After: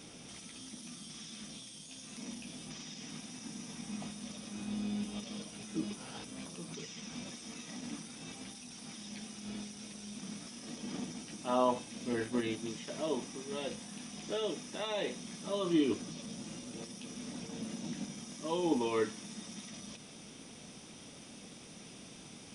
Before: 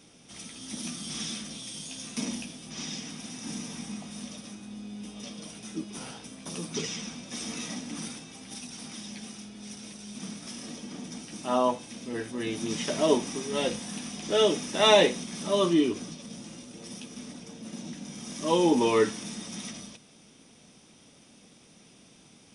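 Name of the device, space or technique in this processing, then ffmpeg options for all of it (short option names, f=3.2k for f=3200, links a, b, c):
de-esser from a sidechain: -filter_complex "[0:a]asplit=2[a][b];[b]highpass=6.5k,apad=whole_len=994122[c];[a][c]sidechaincompress=threshold=-54dB:ratio=10:attack=0.66:release=73,volume=4.5dB"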